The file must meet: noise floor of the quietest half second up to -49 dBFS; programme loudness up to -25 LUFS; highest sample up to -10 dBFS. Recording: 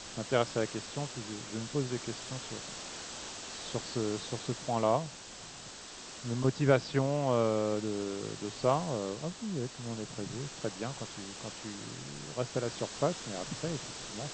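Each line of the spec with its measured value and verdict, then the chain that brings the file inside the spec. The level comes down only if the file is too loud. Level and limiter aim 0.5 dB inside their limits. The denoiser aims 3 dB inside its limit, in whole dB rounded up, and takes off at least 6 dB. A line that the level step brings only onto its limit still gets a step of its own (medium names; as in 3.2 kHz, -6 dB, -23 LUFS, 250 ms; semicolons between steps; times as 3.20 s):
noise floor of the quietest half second -48 dBFS: fail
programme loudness -34.5 LUFS: pass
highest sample -11.0 dBFS: pass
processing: noise reduction 6 dB, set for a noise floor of -48 dBFS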